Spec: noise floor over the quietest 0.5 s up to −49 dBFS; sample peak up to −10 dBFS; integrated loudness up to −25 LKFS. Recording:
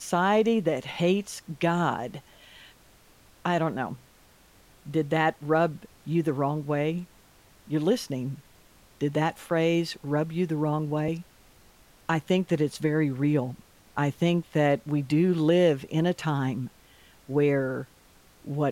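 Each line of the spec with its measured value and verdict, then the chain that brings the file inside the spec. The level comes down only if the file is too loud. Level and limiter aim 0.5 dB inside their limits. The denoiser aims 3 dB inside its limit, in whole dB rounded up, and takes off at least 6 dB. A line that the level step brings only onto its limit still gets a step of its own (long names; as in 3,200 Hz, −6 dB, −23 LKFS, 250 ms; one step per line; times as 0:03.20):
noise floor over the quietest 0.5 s −57 dBFS: in spec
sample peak −11.5 dBFS: in spec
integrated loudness −27.0 LKFS: in spec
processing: no processing needed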